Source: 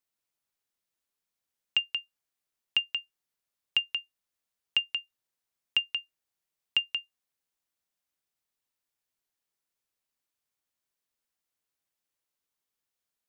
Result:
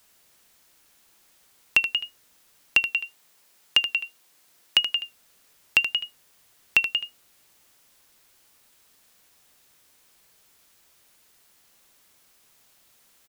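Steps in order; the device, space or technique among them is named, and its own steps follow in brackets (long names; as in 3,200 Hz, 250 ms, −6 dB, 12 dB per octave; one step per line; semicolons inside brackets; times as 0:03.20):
hum removal 239.2 Hz, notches 3
noise-reduction cassette on a plain deck (one half of a high-frequency compander encoder only; tape wow and flutter; white noise bed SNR 29 dB)
0:02.90–0:04.95: high-pass filter 220 Hz 6 dB per octave
single-tap delay 77 ms −10 dB
level +6.5 dB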